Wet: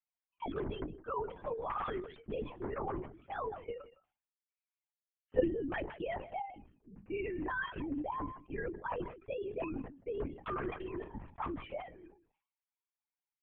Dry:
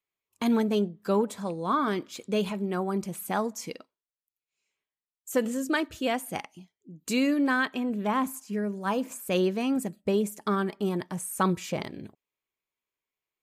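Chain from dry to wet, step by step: sine-wave speech; LPF 2200 Hz 6 dB/oct; bell 850 Hz +6.5 dB 0.46 oct; notches 60/120/180/240 Hz; level quantiser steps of 17 dB; flange 0.22 Hz, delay 2.4 ms, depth 9.2 ms, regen +63%; echo 0.167 s -22 dB; LPC vocoder at 8 kHz whisper; sustainer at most 110 dB/s; gain +1 dB

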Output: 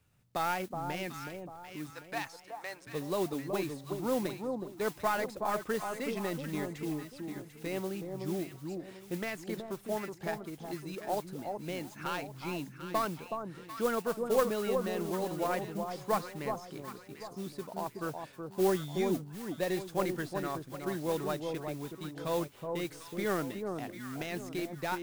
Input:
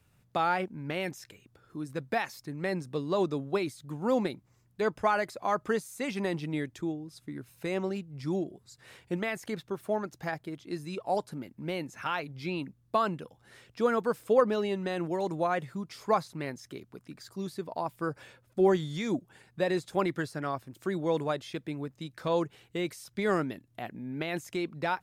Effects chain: tracing distortion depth 0.063 ms; 1.9–2.87 Chebyshev band-pass 850–10000 Hz, order 2; modulation noise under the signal 16 dB; echo with dull and thin repeats by turns 0.372 s, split 1100 Hz, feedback 56%, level -4.5 dB; gain -4.5 dB

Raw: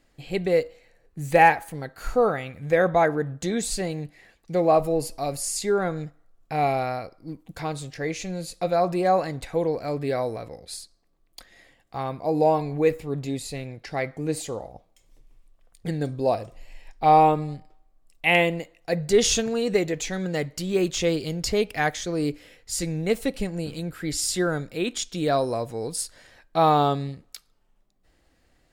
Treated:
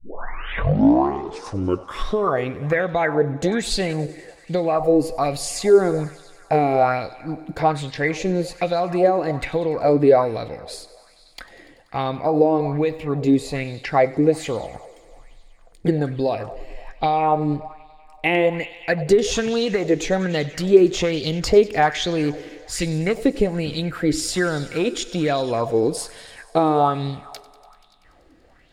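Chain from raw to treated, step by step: tape start at the beginning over 2.51 s; high shelf 5300 Hz -11.5 dB; compressor 8:1, threshold -25 dBFS, peak gain reduction 14.5 dB; thinning echo 96 ms, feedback 81%, high-pass 310 Hz, level -18.5 dB; on a send at -23 dB: reverb RT60 0.75 s, pre-delay 4 ms; on the sum: LFO bell 1.2 Hz 310–3900 Hz +12 dB; gain +7 dB

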